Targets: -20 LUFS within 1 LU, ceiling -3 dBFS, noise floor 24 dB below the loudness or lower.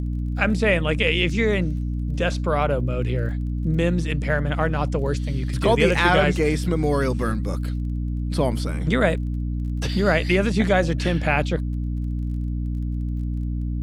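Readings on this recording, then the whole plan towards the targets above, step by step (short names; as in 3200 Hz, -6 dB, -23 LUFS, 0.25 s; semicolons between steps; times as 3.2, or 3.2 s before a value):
ticks 22/s; hum 60 Hz; harmonics up to 300 Hz; hum level -23 dBFS; loudness -22.5 LUFS; peak -4.5 dBFS; loudness target -20.0 LUFS
-> de-click; de-hum 60 Hz, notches 5; gain +2.5 dB; limiter -3 dBFS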